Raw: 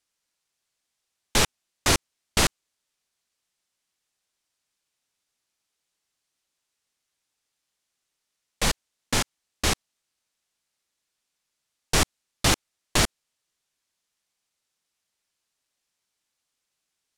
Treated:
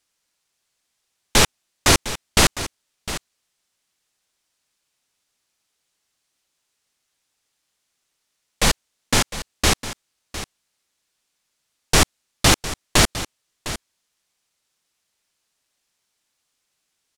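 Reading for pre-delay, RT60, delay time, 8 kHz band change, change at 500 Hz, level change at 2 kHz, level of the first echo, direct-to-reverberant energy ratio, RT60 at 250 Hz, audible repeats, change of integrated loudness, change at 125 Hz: no reverb, no reverb, 706 ms, +6.0 dB, +6.0 dB, +6.0 dB, -13.5 dB, no reverb, no reverb, 1, +6.0 dB, +6.0 dB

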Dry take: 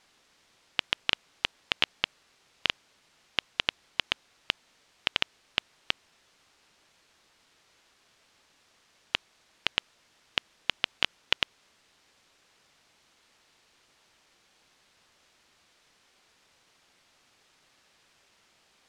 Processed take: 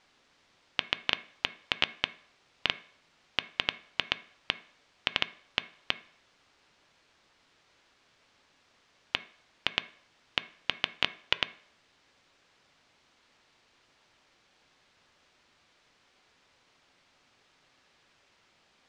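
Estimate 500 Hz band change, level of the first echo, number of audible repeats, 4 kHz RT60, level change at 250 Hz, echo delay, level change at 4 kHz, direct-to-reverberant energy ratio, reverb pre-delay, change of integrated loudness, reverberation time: 0.0 dB, no echo, no echo, 0.55 s, +0.5 dB, no echo, -1.5 dB, 12.0 dB, 3 ms, -1.0 dB, 0.60 s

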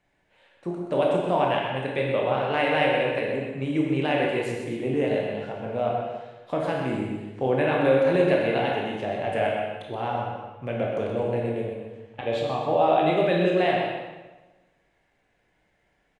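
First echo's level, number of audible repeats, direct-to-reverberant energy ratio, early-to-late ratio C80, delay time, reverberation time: -7.0 dB, 1, -2.5 dB, 1.5 dB, 126 ms, 1.2 s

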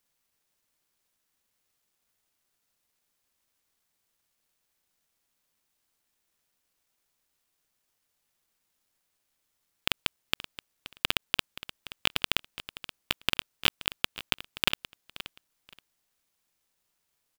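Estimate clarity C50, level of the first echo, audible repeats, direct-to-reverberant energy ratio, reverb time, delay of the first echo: no reverb, -15.0 dB, 2, no reverb, no reverb, 526 ms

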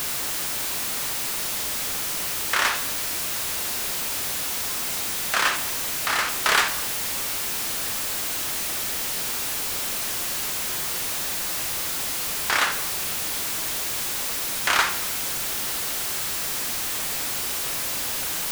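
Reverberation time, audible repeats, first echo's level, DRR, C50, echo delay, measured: 1.0 s, no echo, no echo, 9.0 dB, 12.0 dB, no echo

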